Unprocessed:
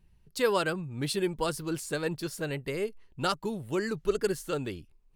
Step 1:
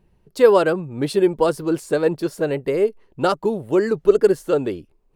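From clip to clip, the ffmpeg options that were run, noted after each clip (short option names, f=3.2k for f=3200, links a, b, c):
-af "equalizer=f=490:t=o:w=2.8:g=14.5"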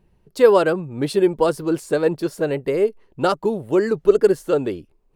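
-af anull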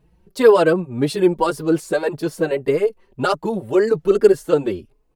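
-filter_complex "[0:a]asplit=2[a][b];[b]adelay=4.3,afreqshift=1.8[c];[a][c]amix=inputs=2:normalize=1,volume=5dB"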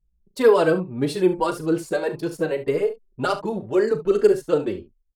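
-af "anlmdn=0.631,aecho=1:1:38|70:0.266|0.2,volume=-4dB"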